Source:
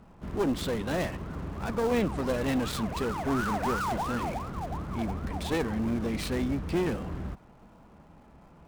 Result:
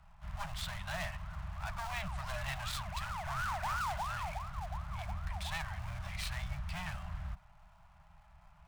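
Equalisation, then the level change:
Chebyshev band-stop filter 190–600 Hz, order 5
guitar amp tone stack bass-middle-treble 10-0-10
high-shelf EQ 2,900 Hz −12 dB
+6.0 dB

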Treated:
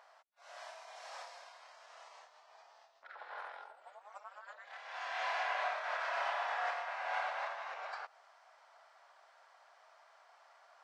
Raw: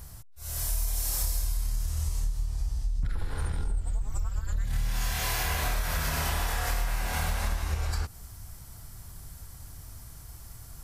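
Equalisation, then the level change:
elliptic high-pass filter 620 Hz, stop band 80 dB
high-frequency loss of the air 58 metres
head-to-tape spacing loss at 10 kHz 34 dB
+3.5 dB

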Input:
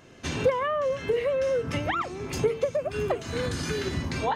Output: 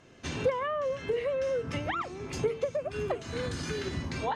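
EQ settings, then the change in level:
low-pass filter 9,500 Hz 12 dB per octave
−4.5 dB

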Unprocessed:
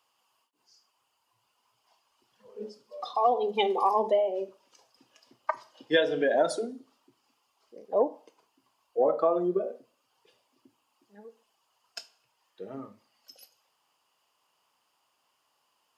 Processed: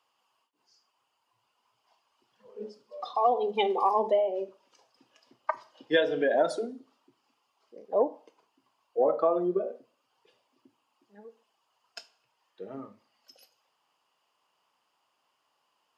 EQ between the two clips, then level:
low-shelf EQ 73 Hz −9.5 dB
high-shelf EQ 6,500 Hz −10.5 dB
0.0 dB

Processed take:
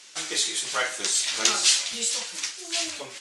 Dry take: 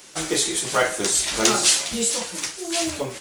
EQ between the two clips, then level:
high-frequency loss of the air 69 metres
tilt shelving filter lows −8.5 dB, about 1,300 Hz
low-shelf EQ 110 Hz −11.5 dB
−5.0 dB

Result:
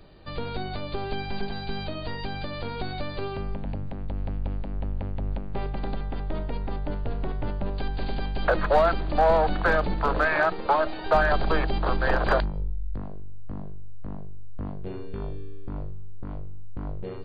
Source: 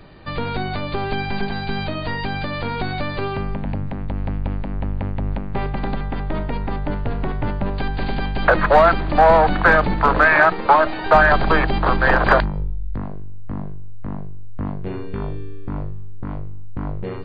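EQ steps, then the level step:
graphic EQ with 10 bands 125 Hz −5 dB, 250 Hz −4 dB, 1,000 Hz −5 dB, 2,000 Hz −7 dB
−4.0 dB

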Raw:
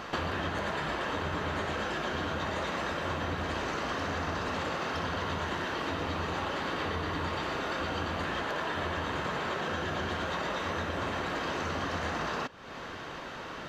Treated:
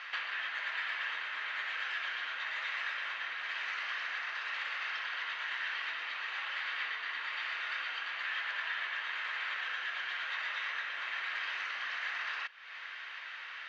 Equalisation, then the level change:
high-pass with resonance 2,000 Hz, resonance Q 2.2
low-pass filter 4,200 Hz 12 dB per octave
high-frequency loss of the air 56 metres
−1.5 dB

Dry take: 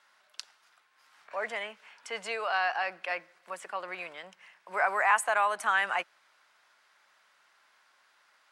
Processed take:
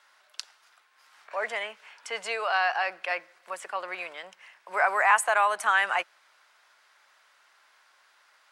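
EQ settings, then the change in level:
bass and treble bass −12 dB, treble +1 dB
+3.5 dB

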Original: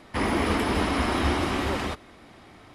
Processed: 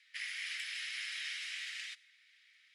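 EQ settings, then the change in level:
Butterworth high-pass 1,800 Hz 48 dB per octave
dynamic equaliser 8,100 Hz, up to +7 dB, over −54 dBFS, Q 0.83
high-frequency loss of the air 70 metres
−6.5 dB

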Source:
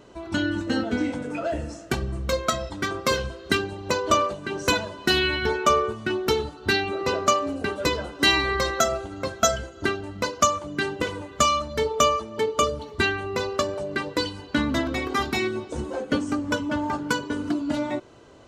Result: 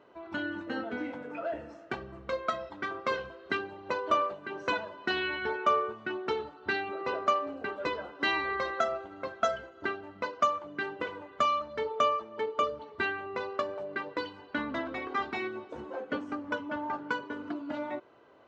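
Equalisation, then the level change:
high-pass filter 1,500 Hz 6 dB per octave
head-to-tape spacing loss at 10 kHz 32 dB
high-shelf EQ 3,000 Hz −10 dB
+4.0 dB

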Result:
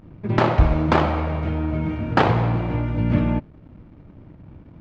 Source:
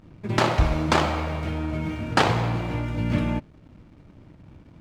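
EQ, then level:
head-to-tape spacing loss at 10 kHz 28 dB
+5.0 dB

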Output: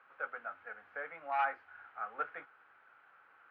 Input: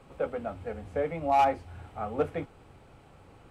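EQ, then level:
resonant band-pass 1,500 Hz, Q 5.1
high-frequency loss of the air 280 metres
spectral tilt +2.5 dB per octave
+7.5 dB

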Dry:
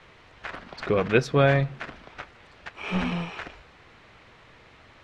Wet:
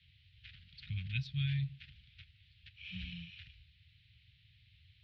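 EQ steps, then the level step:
band-pass filter 140–4,300 Hz
inverse Chebyshev band-stop filter 360–960 Hz, stop band 80 dB
high-frequency loss of the air 440 metres
+8.5 dB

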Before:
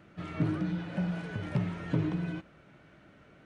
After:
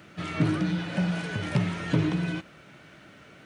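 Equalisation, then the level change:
high-pass filter 74 Hz
high-shelf EQ 2,300 Hz +11 dB
+5.0 dB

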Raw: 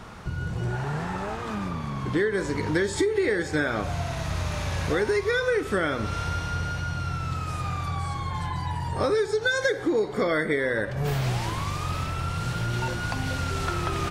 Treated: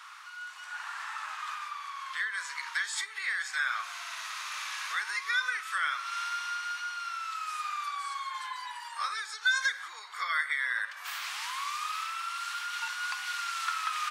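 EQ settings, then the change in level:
Chebyshev high-pass filter 1,100 Hz, order 4
0.0 dB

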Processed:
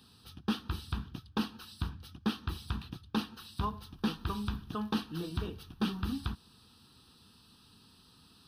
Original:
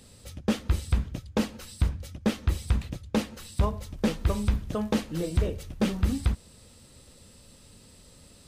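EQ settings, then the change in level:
high-pass filter 270 Hz 6 dB per octave
high-shelf EQ 7,300 Hz −4.5 dB
phaser with its sweep stopped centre 2,100 Hz, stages 6
0.0 dB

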